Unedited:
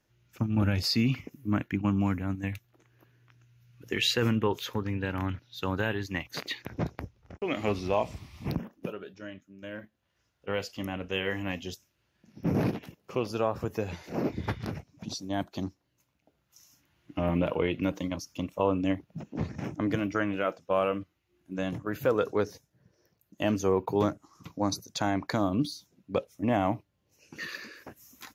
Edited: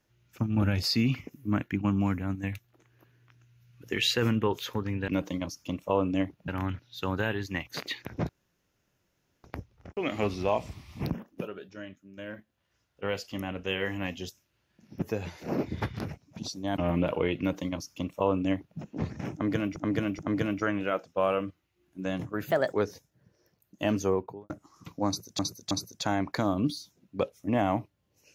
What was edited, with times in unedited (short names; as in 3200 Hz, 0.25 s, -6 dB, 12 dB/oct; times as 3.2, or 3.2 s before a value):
6.89 insert room tone 1.15 s
12.47–13.68 cut
15.43–17.16 cut
17.78–19.18 copy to 5.08
19.72–20.15 loop, 3 plays
22.03–22.32 speed 127%
23.6–24.09 studio fade out
24.66–24.98 loop, 3 plays